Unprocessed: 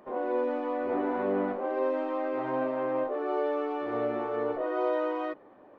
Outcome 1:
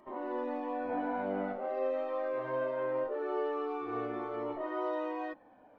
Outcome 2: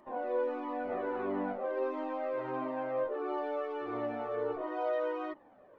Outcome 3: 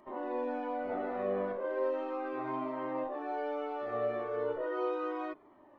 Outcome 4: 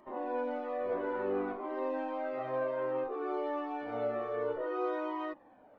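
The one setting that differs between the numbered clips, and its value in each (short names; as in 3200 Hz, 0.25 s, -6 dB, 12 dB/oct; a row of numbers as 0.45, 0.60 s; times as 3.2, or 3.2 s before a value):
cascading flanger, rate: 0.22, 1.5, 0.36, 0.58 Hz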